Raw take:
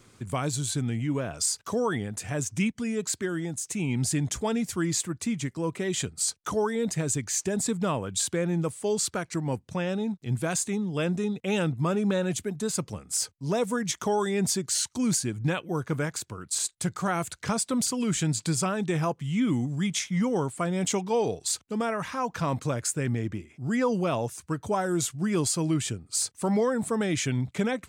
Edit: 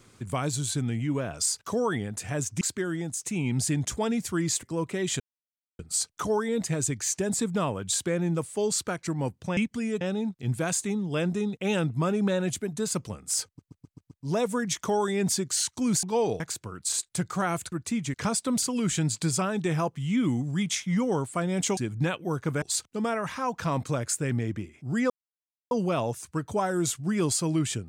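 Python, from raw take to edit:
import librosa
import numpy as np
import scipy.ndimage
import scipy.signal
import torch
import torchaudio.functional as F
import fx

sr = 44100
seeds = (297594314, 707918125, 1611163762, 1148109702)

y = fx.edit(x, sr, fx.move(start_s=2.61, length_s=0.44, to_s=9.84),
    fx.move(start_s=5.07, length_s=0.42, to_s=17.38),
    fx.insert_silence(at_s=6.06, length_s=0.59),
    fx.stutter(start_s=13.29, slice_s=0.13, count=6),
    fx.swap(start_s=15.21, length_s=0.85, other_s=21.01, other_length_s=0.37),
    fx.insert_silence(at_s=23.86, length_s=0.61), tone=tone)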